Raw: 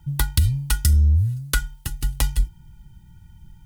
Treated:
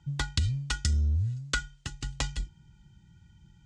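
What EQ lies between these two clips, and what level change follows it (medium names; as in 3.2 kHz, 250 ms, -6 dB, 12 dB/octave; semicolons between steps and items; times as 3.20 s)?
high-pass 130 Hz 6 dB/octave; elliptic low-pass 7.3 kHz, stop band 80 dB; band-stop 900 Hz, Q 11; -3.0 dB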